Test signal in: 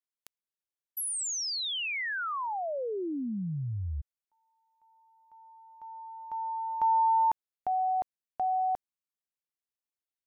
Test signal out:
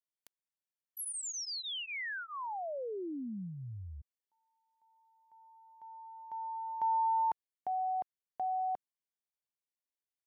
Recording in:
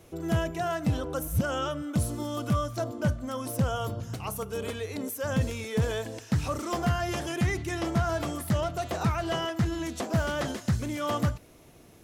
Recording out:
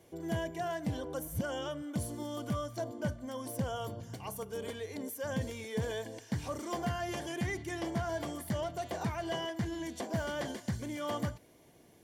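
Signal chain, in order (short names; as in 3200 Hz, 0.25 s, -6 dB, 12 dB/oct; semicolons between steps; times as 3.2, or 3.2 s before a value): dynamic EQ 150 Hz, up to -3 dB, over -39 dBFS, Q 5.1; notch comb 1300 Hz; gain -5.5 dB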